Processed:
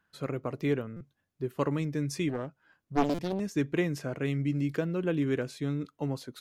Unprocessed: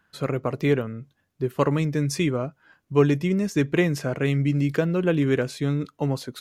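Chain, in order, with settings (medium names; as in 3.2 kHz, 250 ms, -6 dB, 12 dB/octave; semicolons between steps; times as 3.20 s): dynamic bell 300 Hz, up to +3 dB, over -36 dBFS, Q 2.7; buffer glitch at 0.96/3.14 s, samples 256, times 7; 2.29–3.40 s: loudspeaker Doppler distortion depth 0.96 ms; trim -8.5 dB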